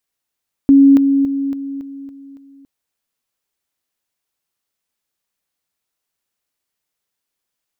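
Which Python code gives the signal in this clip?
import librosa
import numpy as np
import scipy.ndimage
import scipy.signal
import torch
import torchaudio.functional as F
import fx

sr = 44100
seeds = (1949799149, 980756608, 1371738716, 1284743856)

y = fx.level_ladder(sr, hz=276.0, from_db=-4.5, step_db=-6.0, steps=7, dwell_s=0.28, gap_s=0.0)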